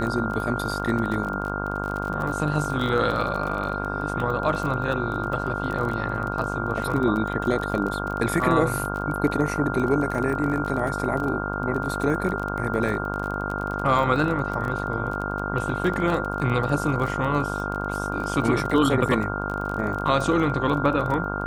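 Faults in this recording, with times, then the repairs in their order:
buzz 50 Hz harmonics 31 -30 dBFS
crackle 26/s -28 dBFS
tone 1400 Hz -31 dBFS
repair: de-click; notch 1400 Hz, Q 30; de-hum 50 Hz, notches 31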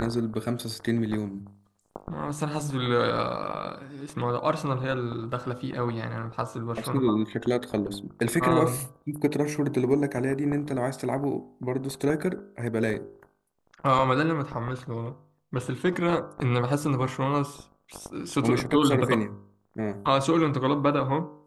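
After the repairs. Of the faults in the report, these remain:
none

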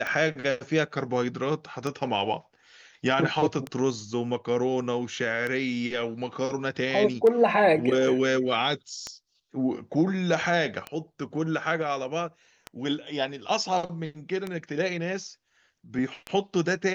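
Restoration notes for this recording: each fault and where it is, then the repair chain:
tick 33 1/3 rpm -17 dBFS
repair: de-click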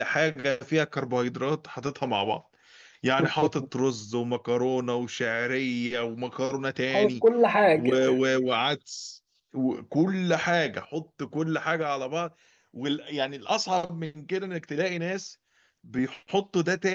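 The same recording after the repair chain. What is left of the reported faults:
none

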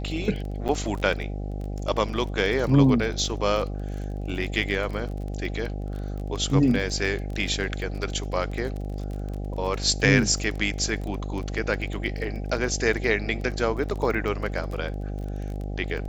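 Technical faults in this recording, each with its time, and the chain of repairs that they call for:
buzz 50 Hz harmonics 16 -31 dBFS
crackle 26/s -31 dBFS
0.68–0.69 gap 8.4 ms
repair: de-click; de-hum 50 Hz, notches 16; interpolate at 0.68, 8.4 ms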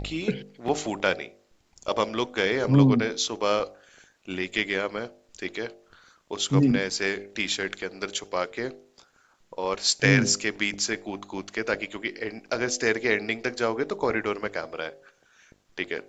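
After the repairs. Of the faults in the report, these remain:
none

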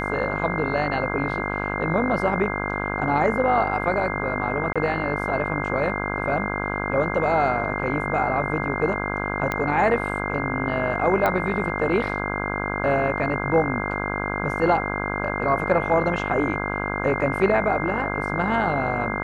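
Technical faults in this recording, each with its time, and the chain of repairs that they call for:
buzz 50 Hz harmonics 33 -28 dBFS
tone 2100 Hz -30 dBFS
4.73–4.76 gap 26 ms
9.52 pop -11 dBFS
11.26 pop -10 dBFS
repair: de-click; notch 2100 Hz, Q 30; de-hum 50 Hz, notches 33; interpolate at 4.73, 26 ms

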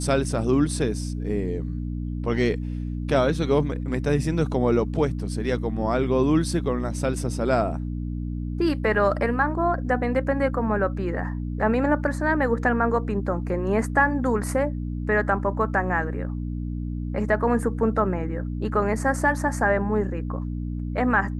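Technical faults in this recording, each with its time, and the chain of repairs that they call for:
hum 60 Hz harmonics 5 -29 dBFS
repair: de-hum 60 Hz, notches 5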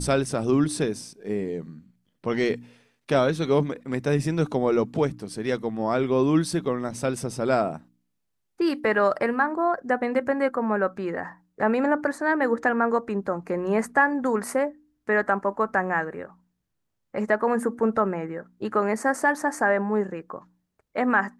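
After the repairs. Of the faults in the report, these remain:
none

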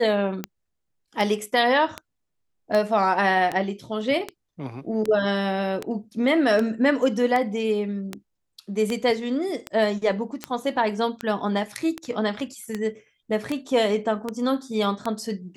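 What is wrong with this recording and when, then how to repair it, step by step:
tick 78 rpm -13 dBFS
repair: de-click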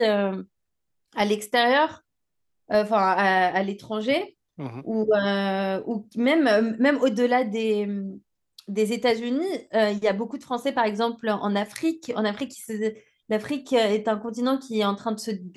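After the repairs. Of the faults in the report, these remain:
none

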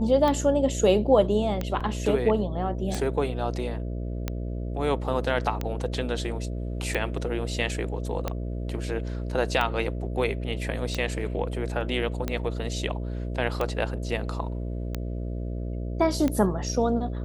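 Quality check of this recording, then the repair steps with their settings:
buzz 60 Hz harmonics 11 -31 dBFS
tick 45 rpm -14 dBFS
1.8–1.81 gap 5.8 ms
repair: de-click; de-hum 60 Hz, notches 11; interpolate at 1.8, 5.8 ms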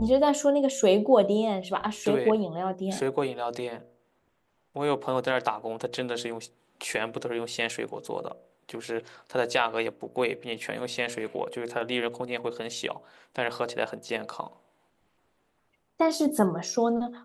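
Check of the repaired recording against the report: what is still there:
none

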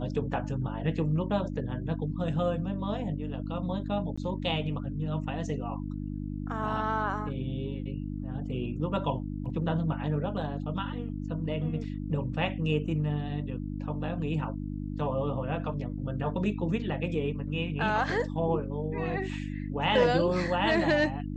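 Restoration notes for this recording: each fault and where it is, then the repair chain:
hum 50 Hz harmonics 6 -35 dBFS
4.16–4.17 gap 15 ms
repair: de-hum 50 Hz, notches 6; interpolate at 4.16, 15 ms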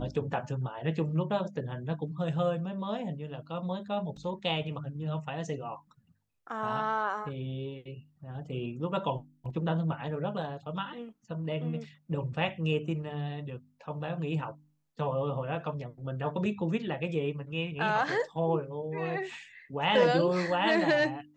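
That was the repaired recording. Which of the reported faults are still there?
none

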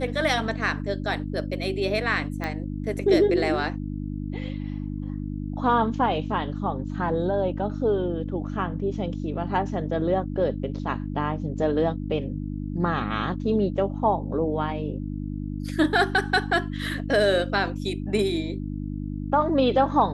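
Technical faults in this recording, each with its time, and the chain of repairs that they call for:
hum 50 Hz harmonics 6 -31 dBFS
2.44 pop -16 dBFS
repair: de-click; de-hum 50 Hz, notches 6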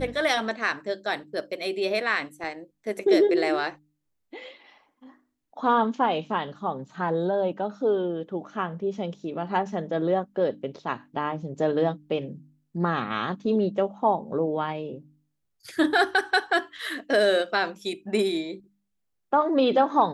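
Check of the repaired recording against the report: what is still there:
2.44 pop

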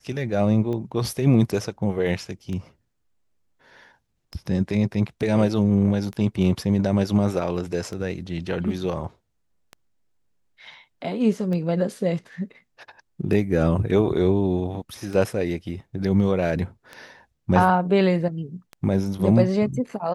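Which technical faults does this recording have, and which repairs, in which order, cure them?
tick 33 1/3 rpm -21 dBFS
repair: de-click

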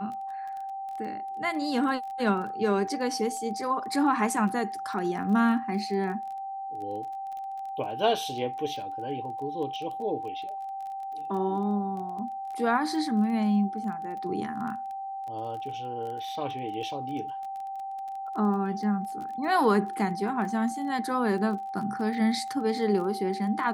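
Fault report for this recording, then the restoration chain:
crackle 20/s -36 dBFS
tone 780 Hz -33 dBFS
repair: de-click; notch 780 Hz, Q 30

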